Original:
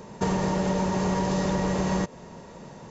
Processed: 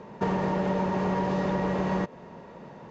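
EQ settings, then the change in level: LPF 2700 Hz 12 dB/oct; low shelf 92 Hz -11 dB; 0.0 dB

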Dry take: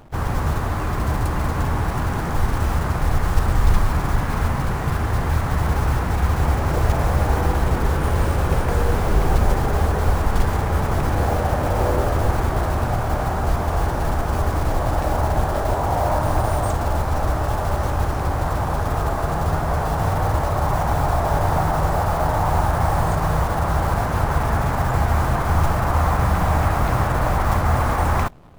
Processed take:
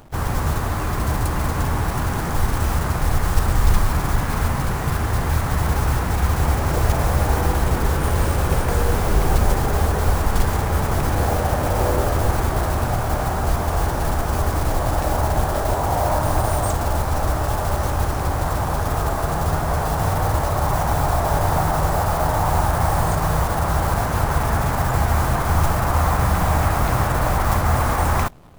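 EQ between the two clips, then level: high shelf 4800 Hz +8 dB; 0.0 dB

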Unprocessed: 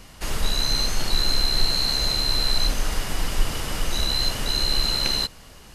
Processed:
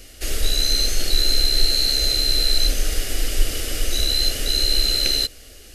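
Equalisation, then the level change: high shelf 8300 Hz +5 dB; fixed phaser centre 400 Hz, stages 4; +3.5 dB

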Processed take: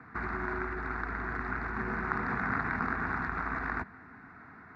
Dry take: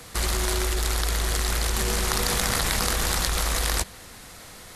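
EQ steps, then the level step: speaker cabinet 110–2300 Hz, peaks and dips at 260 Hz +9 dB, 440 Hz +6 dB, 640 Hz +5 dB, 1500 Hz +6 dB; fixed phaser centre 1300 Hz, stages 4; -3.5 dB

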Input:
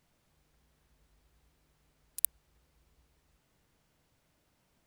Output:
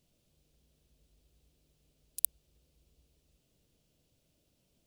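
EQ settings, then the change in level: band shelf 1300 Hz -12.5 dB; 0.0 dB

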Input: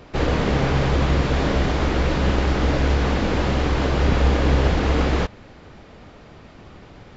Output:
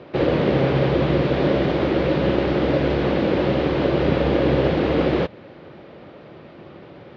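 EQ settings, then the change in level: dynamic EQ 1200 Hz, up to -3 dB, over -34 dBFS, Q 0.86; speaker cabinet 120–4100 Hz, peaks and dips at 150 Hz +5 dB, 350 Hz +8 dB, 550 Hz +8 dB; 0.0 dB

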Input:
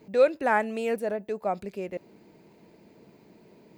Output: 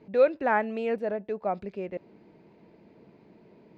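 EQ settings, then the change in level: air absorption 210 m; 0.0 dB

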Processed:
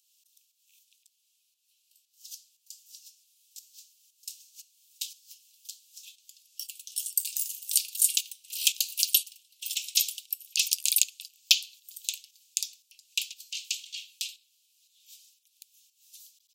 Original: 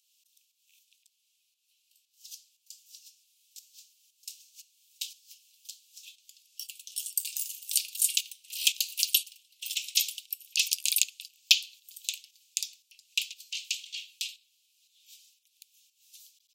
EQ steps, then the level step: high shelf 2700 Hz +11 dB; -7.5 dB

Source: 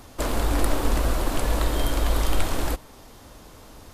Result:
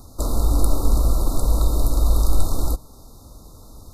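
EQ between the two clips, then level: brick-wall FIR band-stop 1400–3600 Hz; low shelf 220 Hz +10.5 dB; high shelf 5300 Hz +8 dB; -4.0 dB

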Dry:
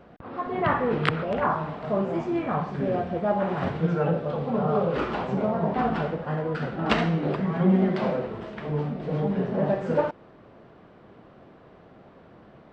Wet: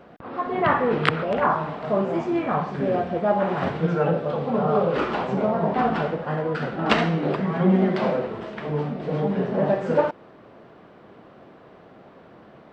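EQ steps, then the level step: low shelf 110 Hz -10.5 dB; +4.0 dB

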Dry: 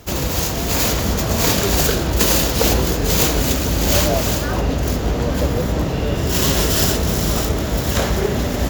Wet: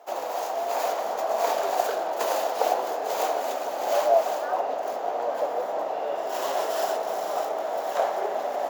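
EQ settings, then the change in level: ladder high-pass 630 Hz, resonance 60%; tilt shelf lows +9 dB, about 1400 Hz; 0.0 dB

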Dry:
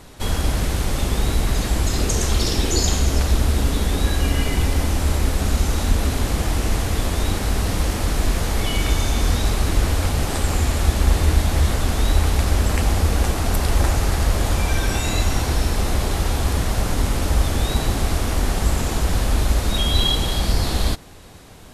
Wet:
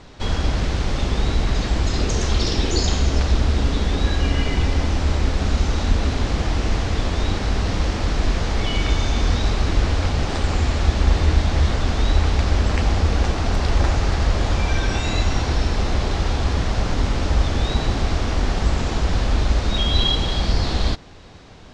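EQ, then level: LPF 5900 Hz 24 dB/oct; 0.0 dB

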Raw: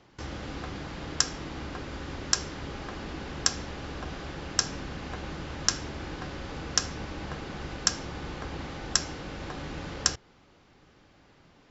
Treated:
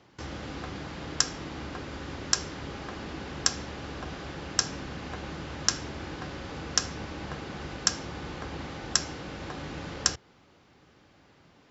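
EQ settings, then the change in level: HPF 60 Hz; 0.0 dB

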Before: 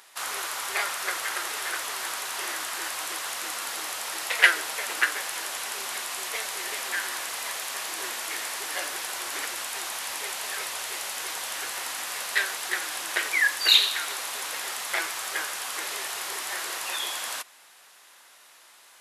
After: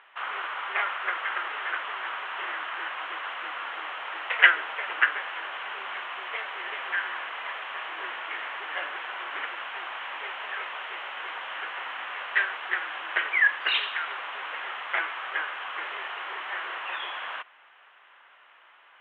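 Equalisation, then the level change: Bessel high-pass 380 Hz, order 2; elliptic low-pass 3100 Hz, stop band 40 dB; bell 1300 Hz +4.5 dB 1.3 oct; -1.0 dB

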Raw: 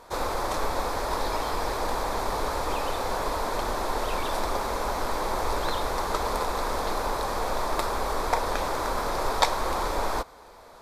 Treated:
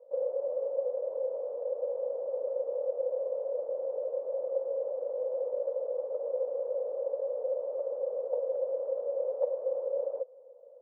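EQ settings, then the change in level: Butterworth band-pass 530 Hz, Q 7.2; +7.0 dB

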